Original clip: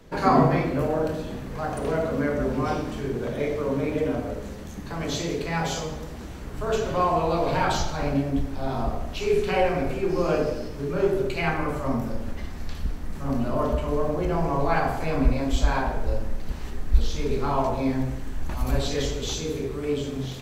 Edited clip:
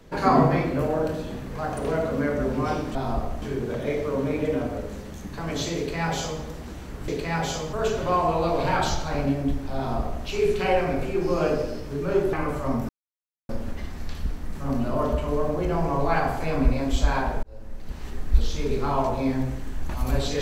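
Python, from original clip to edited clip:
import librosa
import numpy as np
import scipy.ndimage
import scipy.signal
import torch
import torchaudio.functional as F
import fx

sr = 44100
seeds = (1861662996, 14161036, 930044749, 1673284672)

y = fx.edit(x, sr, fx.duplicate(start_s=5.3, length_s=0.65, to_s=6.61),
    fx.duplicate(start_s=8.65, length_s=0.47, to_s=2.95),
    fx.cut(start_s=11.21, length_s=0.32),
    fx.insert_silence(at_s=12.09, length_s=0.6),
    fx.fade_in_span(start_s=16.03, length_s=0.75), tone=tone)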